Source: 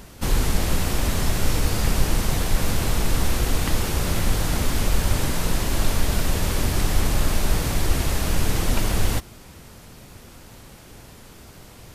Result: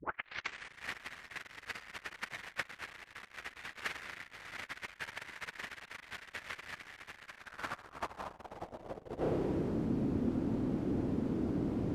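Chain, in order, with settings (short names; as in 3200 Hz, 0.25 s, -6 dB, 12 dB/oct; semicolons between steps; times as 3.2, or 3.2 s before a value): tape start at the beginning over 0.91 s; soft clip -21 dBFS, distortion -9 dB; low shelf 170 Hz +5 dB; spring tank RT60 1.7 s, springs 31 ms, chirp 50 ms, DRR 12 dB; negative-ratio compressor -29 dBFS, ratio -0.5; band-pass sweep 1900 Hz -> 280 Hz, 7.25–9.9; gain +7 dB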